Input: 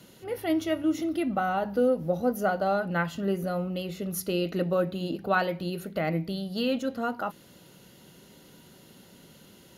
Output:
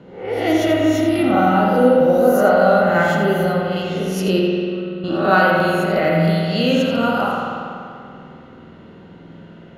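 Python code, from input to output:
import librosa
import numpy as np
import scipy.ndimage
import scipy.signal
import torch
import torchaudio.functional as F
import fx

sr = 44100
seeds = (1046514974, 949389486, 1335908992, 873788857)

p1 = fx.spec_swells(x, sr, rise_s=0.58)
p2 = fx.tone_stack(p1, sr, knobs='6-0-2', at=(4.39, 5.04))
p3 = fx.rev_spring(p2, sr, rt60_s=2.5, pass_ms=(48,), chirp_ms=35, drr_db=-2.0)
p4 = fx.env_lowpass(p3, sr, base_hz=1500.0, full_db=-20.0)
p5 = p4 + fx.echo_single(p4, sr, ms=85, db=-9.5, dry=0)
y = p5 * 10.0 ** (6.5 / 20.0)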